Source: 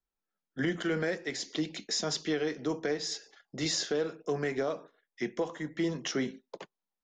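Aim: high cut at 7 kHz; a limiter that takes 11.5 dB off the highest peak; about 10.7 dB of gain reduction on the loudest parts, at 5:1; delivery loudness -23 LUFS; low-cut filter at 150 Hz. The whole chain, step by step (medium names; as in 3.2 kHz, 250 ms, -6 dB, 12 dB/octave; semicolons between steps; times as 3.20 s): high-pass 150 Hz; low-pass 7 kHz; compression 5:1, threshold -39 dBFS; trim +23.5 dB; peak limiter -13 dBFS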